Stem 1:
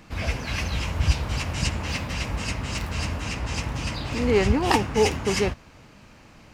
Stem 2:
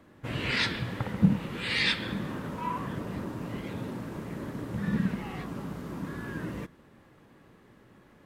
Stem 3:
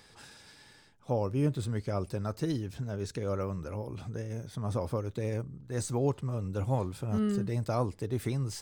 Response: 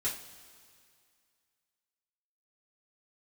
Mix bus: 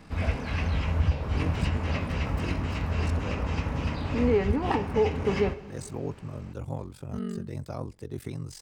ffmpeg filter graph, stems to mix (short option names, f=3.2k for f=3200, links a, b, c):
-filter_complex "[0:a]acrossover=split=4500[a][b];[b]acompressor=threshold=-49dB:ratio=4:attack=1:release=60[c];[a][c]amix=inputs=2:normalize=0,highshelf=f=2.4k:g=-10.5,volume=-2dB,asplit=2[d][e];[e]volume=-9dB[f];[2:a]acrossover=split=390[g][h];[h]acompressor=threshold=-33dB:ratio=3[i];[g][i]amix=inputs=2:normalize=0,aeval=exprs='val(0)*sin(2*PI*23*n/s)':c=same,volume=-1.5dB[j];[3:a]atrim=start_sample=2205[k];[f][k]afir=irnorm=-1:irlink=0[l];[d][j][l]amix=inputs=3:normalize=0,alimiter=limit=-14dB:level=0:latency=1:release=314"